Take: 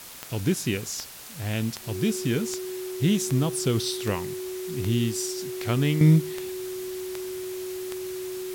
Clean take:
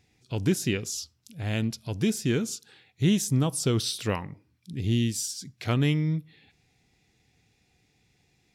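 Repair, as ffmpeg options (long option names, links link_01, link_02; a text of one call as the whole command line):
ffmpeg -i in.wav -af "adeclick=threshold=4,bandreject=frequency=370:width=30,afwtdn=0.0079,asetnsamples=nb_out_samples=441:pad=0,asendcmd='6.01 volume volume -10.5dB',volume=0dB" out.wav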